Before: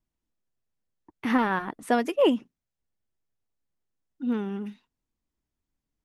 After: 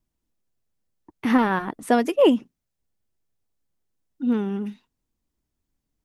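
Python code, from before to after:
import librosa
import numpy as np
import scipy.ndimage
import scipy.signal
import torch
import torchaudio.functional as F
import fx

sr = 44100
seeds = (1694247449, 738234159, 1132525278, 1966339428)

y = fx.peak_eq(x, sr, hz=1800.0, db=-3.5, octaves=2.7)
y = y * 10.0 ** (5.5 / 20.0)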